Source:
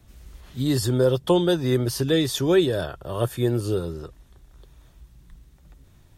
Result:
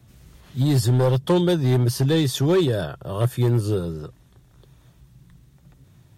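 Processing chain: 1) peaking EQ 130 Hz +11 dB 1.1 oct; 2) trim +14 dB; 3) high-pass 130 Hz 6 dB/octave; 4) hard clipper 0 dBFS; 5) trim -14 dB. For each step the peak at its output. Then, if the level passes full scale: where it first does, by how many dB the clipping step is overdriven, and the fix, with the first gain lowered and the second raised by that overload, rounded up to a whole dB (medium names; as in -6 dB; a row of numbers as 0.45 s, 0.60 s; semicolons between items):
-5.0 dBFS, +9.0 dBFS, +8.0 dBFS, 0.0 dBFS, -14.0 dBFS; step 2, 8.0 dB; step 2 +6 dB, step 5 -6 dB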